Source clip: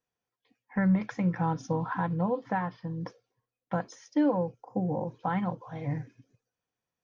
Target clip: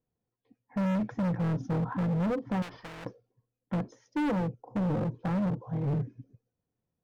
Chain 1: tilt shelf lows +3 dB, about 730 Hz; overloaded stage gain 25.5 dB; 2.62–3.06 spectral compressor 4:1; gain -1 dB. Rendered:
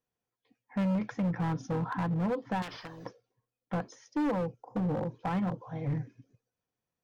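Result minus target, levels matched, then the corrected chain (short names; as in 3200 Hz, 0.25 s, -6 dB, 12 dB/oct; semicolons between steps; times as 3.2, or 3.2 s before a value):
1000 Hz band +3.5 dB
tilt shelf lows +12 dB, about 730 Hz; overloaded stage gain 25.5 dB; 2.62–3.06 spectral compressor 4:1; gain -1 dB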